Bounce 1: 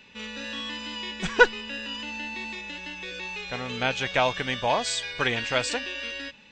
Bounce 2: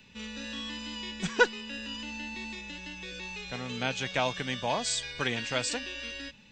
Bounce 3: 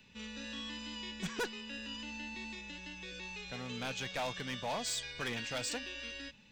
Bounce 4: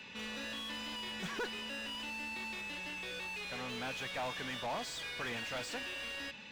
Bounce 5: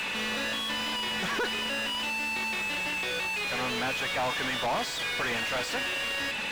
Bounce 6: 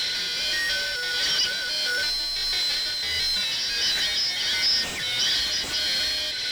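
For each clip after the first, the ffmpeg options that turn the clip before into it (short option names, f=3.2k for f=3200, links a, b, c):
-filter_complex "[0:a]bass=f=250:g=11,treble=f=4k:g=7,acrossover=split=150|2900[a][b][c];[a]acompressor=threshold=-44dB:ratio=6[d];[d][b][c]amix=inputs=3:normalize=0,volume=-6.5dB"
-af "volume=27dB,asoftclip=hard,volume=-27dB,volume=-5dB"
-filter_complex "[0:a]asplit=2[a][b];[b]highpass=f=720:p=1,volume=25dB,asoftclip=type=tanh:threshold=-31.5dB[c];[a][c]amix=inputs=2:normalize=0,lowpass=f=2.2k:p=1,volume=-6dB,volume=-1.5dB"
-filter_complex "[0:a]acompressor=mode=upward:threshold=-43dB:ratio=2.5,asplit=2[a][b];[b]highpass=f=720:p=1,volume=28dB,asoftclip=type=tanh:threshold=-30.5dB[c];[a][c]amix=inputs=2:normalize=0,lowpass=f=2.5k:p=1,volume=-6dB,volume=7dB"
-af "afftfilt=real='real(if(lt(b,272),68*(eq(floor(b/68),0)*3+eq(floor(b/68),1)*2+eq(floor(b/68),2)*1+eq(floor(b/68),3)*0)+mod(b,68),b),0)':imag='imag(if(lt(b,272),68*(eq(floor(b/68),0)*3+eq(floor(b/68),1)*2+eq(floor(b/68),2)*1+eq(floor(b/68),3)*0)+mod(b,68),b),0)':win_size=2048:overlap=0.75,tremolo=f=1.5:d=0.36,volume=7dB"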